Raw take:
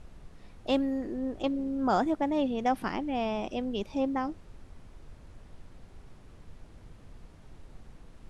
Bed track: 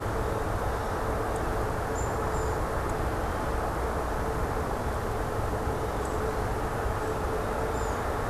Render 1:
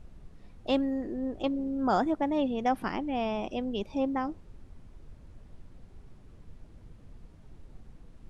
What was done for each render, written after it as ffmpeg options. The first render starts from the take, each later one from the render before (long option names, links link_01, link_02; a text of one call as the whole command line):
ffmpeg -i in.wav -af "afftdn=noise_reduction=6:noise_floor=-53" out.wav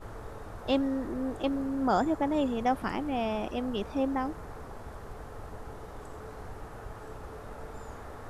ffmpeg -i in.wav -i bed.wav -filter_complex "[1:a]volume=-14.5dB[link_01];[0:a][link_01]amix=inputs=2:normalize=0" out.wav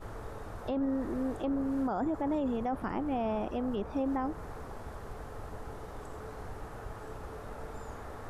ffmpeg -i in.wav -filter_complex "[0:a]acrossover=split=1700[link_01][link_02];[link_02]acompressor=threshold=-54dB:ratio=6[link_03];[link_01][link_03]amix=inputs=2:normalize=0,alimiter=level_in=1dB:limit=-24dB:level=0:latency=1:release=14,volume=-1dB" out.wav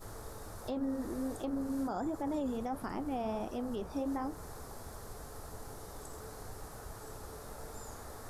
ffmpeg -i in.wav -af "aexciter=amount=3.8:drive=6.2:freq=4000,flanger=delay=7.3:depth=8.4:regen=-64:speed=1.4:shape=triangular" out.wav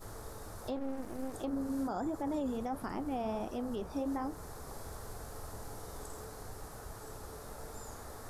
ffmpeg -i in.wav -filter_complex "[0:a]asettb=1/sr,asplit=3[link_01][link_02][link_03];[link_01]atrim=end=0.764[link_04];[link_02]atrim=start=0.76:end=1.34,asetpts=PTS-STARTPTS,afade=type=in:duration=0.004:curve=qsin,afade=type=out:start_time=0.576:duration=0.004:curve=qsin,aeval=exprs='max(val(0),0)':channel_layout=same[link_05];[link_03]atrim=start=1.336[link_06];[link_04][link_05]acrossfade=duration=0.004:curve1=hsin:curve2=qsin[link_07];[link_07][link_06]acrossfade=duration=0.004:curve1=qsin:curve2=hsin,asettb=1/sr,asplit=3[link_08][link_09][link_10];[link_08]atrim=end=4.624[link_11];[link_09]atrim=start=4.62:end=6.25,asetpts=PTS-STARTPTS,afade=type=in:duration=0.004:curve=qsin,afade=type=out:start_time=1.626:duration=0.004:curve=qsin,asplit=2[link_12][link_13];[link_13]adelay=47,volume=-5dB[link_14];[link_12][link_14]amix=inputs=2:normalize=0,atrim=end_sample=71883[link_15];[link_10]atrim=start=6.246[link_16];[link_11][link_15]acrossfade=duration=0.004:curve1=hsin:curve2=qsin[link_17];[link_17][link_16]acrossfade=duration=0.004:curve1=qsin:curve2=hsin" out.wav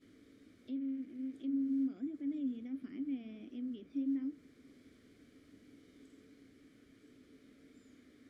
ffmpeg -i in.wav -filter_complex "[0:a]asplit=2[link_01][link_02];[link_02]volume=31.5dB,asoftclip=hard,volume=-31.5dB,volume=-9dB[link_03];[link_01][link_03]amix=inputs=2:normalize=0,asplit=3[link_04][link_05][link_06];[link_04]bandpass=frequency=270:width_type=q:width=8,volume=0dB[link_07];[link_05]bandpass=frequency=2290:width_type=q:width=8,volume=-6dB[link_08];[link_06]bandpass=frequency=3010:width_type=q:width=8,volume=-9dB[link_09];[link_07][link_08][link_09]amix=inputs=3:normalize=0" out.wav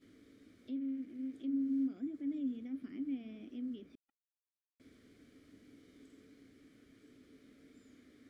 ffmpeg -i in.wav -filter_complex "[0:a]asettb=1/sr,asplit=3[link_01][link_02][link_03];[link_01]atrim=end=3.954[link_04];[link_02]atrim=start=3.95:end=4.8,asetpts=PTS-STARTPTS,afade=type=in:duration=0.004:curve=qsin,afade=type=out:start_time=0.846:duration=0.004:curve=qsin,acrusher=bits=3:mix=0:aa=0.5[link_05];[link_03]atrim=start=4.796[link_06];[link_04][link_05]acrossfade=duration=0.004:curve1=hsin:curve2=qsin[link_07];[link_07][link_06]acrossfade=duration=0.004:curve1=qsin:curve2=hsin" out.wav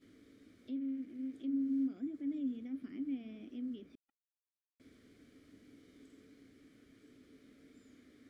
ffmpeg -i in.wav -af anull out.wav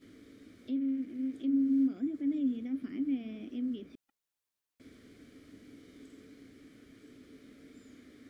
ffmpeg -i in.wav -af "volume=6.5dB" out.wav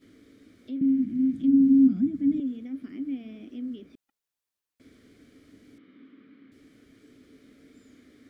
ffmpeg -i in.wav -filter_complex "[0:a]asettb=1/sr,asplit=3[link_01][link_02][link_03];[link_01]atrim=end=0.814[link_04];[link_02]atrim=start=0.81:end=2.4,asetpts=PTS-STARTPTS,afade=type=in:duration=0.004:curve=qsin,afade=type=out:start_time=1.586:duration=0.004:curve=qsin,lowshelf=frequency=290:width_type=q:width=3:gain=14[link_05];[link_03]atrim=start=2.396[link_06];[link_04][link_05]acrossfade=duration=0.004:curve1=hsin:curve2=qsin[link_07];[link_07][link_06]acrossfade=duration=0.004:curve1=qsin:curve2=hsin,asettb=1/sr,asplit=3[link_08][link_09][link_10];[link_08]atrim=end=5.784[link_11];[link_09]atrim=start=5.78:end=6.52,asetpts=PTS-STARTPTS,afade=type=in:duration=0.004:curve=qsin,afade=type=out:start_time=0.736:duration=0.004:curve=qsin,highpass=frequency=120:width=0.5412,highpass=frequency=120:width=1.3066,equalizer=frequency=130:width_type=q:width=4:gain=-8,equalizer=frequency=230:width_type=q:width=4:gain=5,equalizer=frequency=440:width_type=q:width=4:gain=-6,equalizer=frequency=680:width_type=q:width=4:gain=-8,equalizer=frequency=1200:width_type=q:width=4:gain=5,lowpass=frequency=3200:width=0.5412,lowpass=frequency=3200:width=1.3066[link_12];[link_10]atrim=start=6.516[link_13];[link_11][link_12]acrossfade=duration=0.004:curve1=hsin:curve2=qsin[link_14];[link_14][link_13]acrossfade=duration=0.004:curve1=qsin:curve2=hsin" out.wav